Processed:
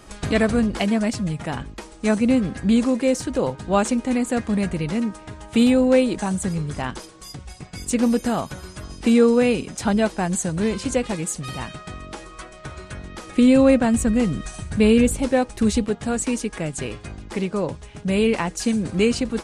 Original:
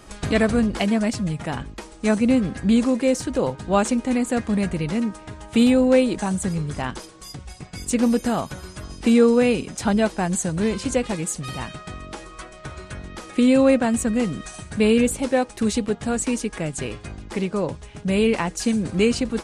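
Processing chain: 13.27–15.84 s: bass shelf 130 Hz +10.5 dB

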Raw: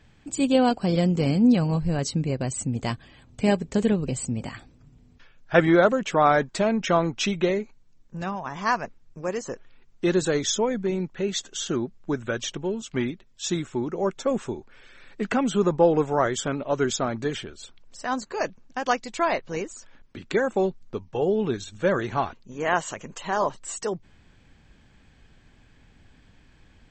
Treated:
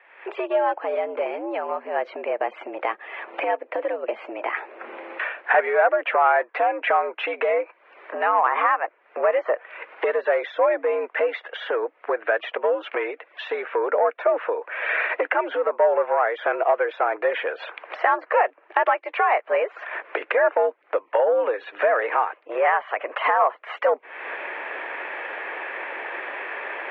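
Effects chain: recorder AGC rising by 52 dB/s; saturation -10 dBFS, distortion -19 dB; mistuned SSB +91 Hz 410–2300 Hz; tape noise reduction on one side only encoder only; trim +2.5 dB

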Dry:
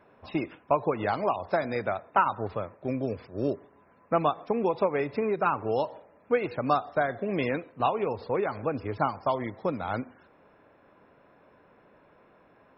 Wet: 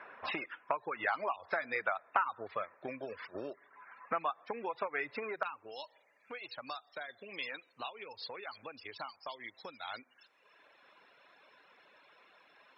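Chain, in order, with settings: reverb removal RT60 1 s; compression 10:1, threshold -38 dBFS, peak gain reduction 21 dB; band-pass filter 1.7 kHz, Q 1.5, from 5.43 s 4.3 kHz; trim +15.5 dB

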